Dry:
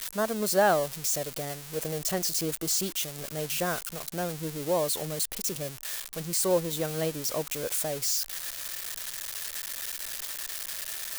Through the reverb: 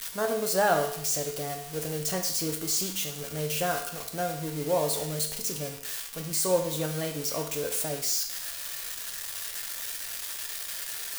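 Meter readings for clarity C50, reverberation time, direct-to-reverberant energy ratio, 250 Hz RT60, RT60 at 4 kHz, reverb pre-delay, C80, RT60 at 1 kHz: 7.5 dB, 0.70 s, 2.0 dB, 0.70 s, 0.70 s, 4 ms, 11.0 dB, 0.70 s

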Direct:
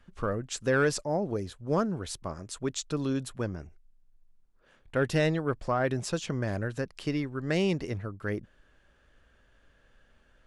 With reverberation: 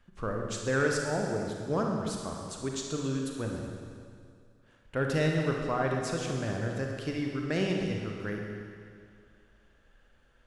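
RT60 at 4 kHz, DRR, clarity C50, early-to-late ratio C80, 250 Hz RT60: 2.1 s, 0.5 dB, 1.5 dB, 3.5 dB, 2.2 s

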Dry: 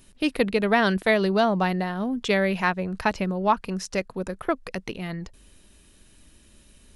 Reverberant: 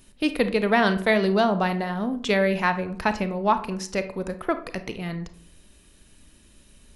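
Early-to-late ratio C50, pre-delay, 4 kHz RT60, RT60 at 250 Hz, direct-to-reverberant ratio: 12.5 dB, 28 ms, 0.30 s, 0.70 s, 9.5 dB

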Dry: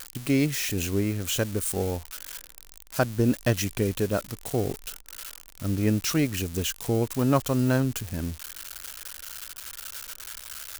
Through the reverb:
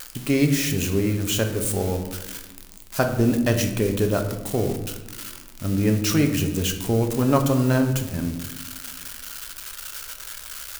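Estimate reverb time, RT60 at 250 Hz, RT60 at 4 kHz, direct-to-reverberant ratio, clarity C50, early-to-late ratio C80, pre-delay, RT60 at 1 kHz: 1.2 s, 2.0 s, 0.60 s, 4.5 dB, 8.5 dB, 10.5 dB, 4 ms, 1.0 s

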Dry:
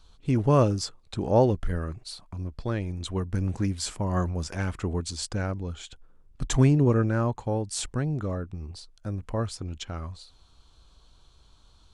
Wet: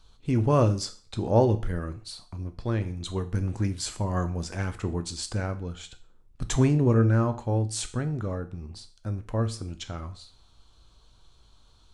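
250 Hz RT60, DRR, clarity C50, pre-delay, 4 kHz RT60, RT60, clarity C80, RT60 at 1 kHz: 0.40 s, 8.5 dB, 15.5 dB, 8 ms, 0.40 s, 0.40 s, 19.5 dB, 0.40 s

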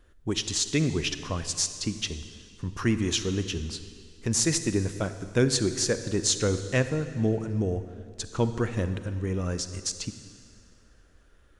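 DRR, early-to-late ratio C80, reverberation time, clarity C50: 10.5 dB, 11.5 dB, 2.2 s, 11.0 dB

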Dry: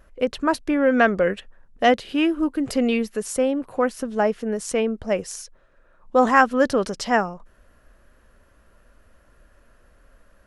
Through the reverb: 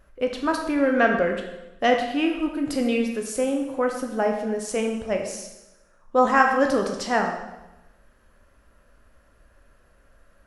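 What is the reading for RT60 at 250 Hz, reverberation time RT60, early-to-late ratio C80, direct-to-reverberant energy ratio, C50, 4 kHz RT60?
1.0 s, 1.0 s, 7.5 dB, 2.0 dB, 5.5 dB, 0.90 s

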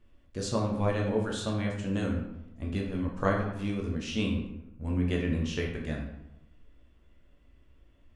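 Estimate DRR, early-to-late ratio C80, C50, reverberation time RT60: −1.5 dB, 7.5 dB, 4.5 dB, 0.90 s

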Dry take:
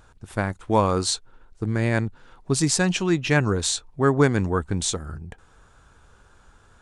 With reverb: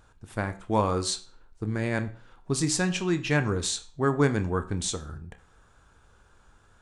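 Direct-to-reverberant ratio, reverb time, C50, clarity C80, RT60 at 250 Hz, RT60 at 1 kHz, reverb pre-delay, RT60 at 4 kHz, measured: 9.0 dB, 0.45 s, 15.5 dB, 19.5 dB, 0.40 s, 0.45 s, 16 ms, 0.40 s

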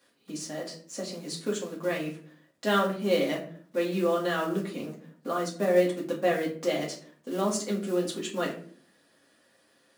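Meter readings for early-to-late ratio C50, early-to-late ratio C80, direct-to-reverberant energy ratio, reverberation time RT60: 9.0 dB, 13.0 dB, −3.5 dB, 0.50 s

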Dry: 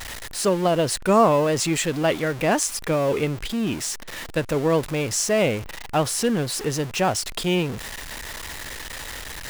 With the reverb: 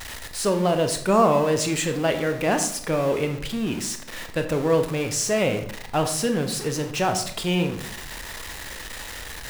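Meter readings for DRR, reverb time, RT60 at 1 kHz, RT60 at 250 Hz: 6.0 dB, 0.70 s, 0.65 s, 0.75 s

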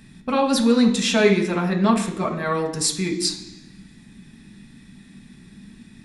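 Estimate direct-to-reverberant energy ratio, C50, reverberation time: 0.5 dB, 8.5 dB, 0.85 s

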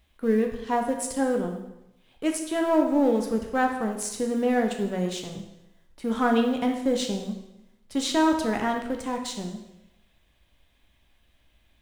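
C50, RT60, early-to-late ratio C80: 6.5 dB, 0.90 s, 9.0 dB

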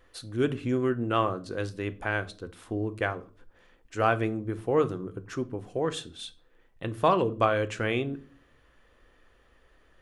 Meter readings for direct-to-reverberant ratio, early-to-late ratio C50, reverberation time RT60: 11.0 dB, 19.5 dB, 0.45 s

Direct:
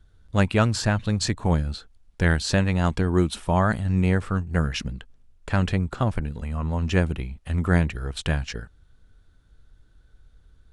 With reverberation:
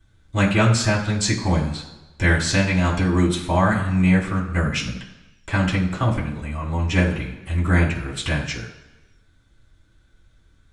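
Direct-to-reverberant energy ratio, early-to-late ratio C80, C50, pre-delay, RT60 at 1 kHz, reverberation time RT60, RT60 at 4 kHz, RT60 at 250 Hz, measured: −6.0 dB, 10.5 dB, 8.0 dB, 3 ms, 1.1 s, 1.1 s, 1.0 s, 1.0 s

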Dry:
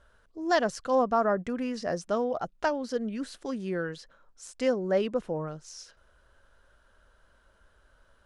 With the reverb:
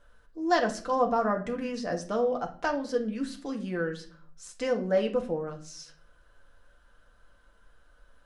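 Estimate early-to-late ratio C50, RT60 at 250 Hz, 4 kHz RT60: 12.0 dB, 0.75 s, 0.35 s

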